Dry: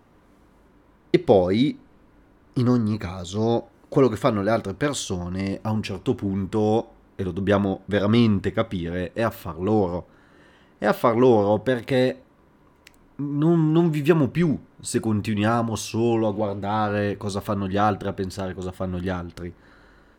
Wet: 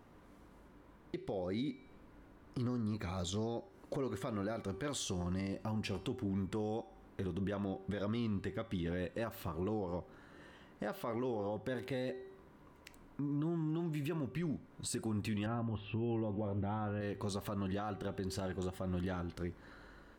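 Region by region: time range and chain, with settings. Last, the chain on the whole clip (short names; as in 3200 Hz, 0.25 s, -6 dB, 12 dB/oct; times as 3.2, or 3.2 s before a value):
15.46–17.01 elliptic low-pass 3200 Hz, stop band 50 dB + low shelf 270 Hz +11 dB
whole clip: de-hum 384.9 Hz, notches 32; compressor 4:1, threshold -30 dBFS; limiter -26 dBFS; gain -4 dB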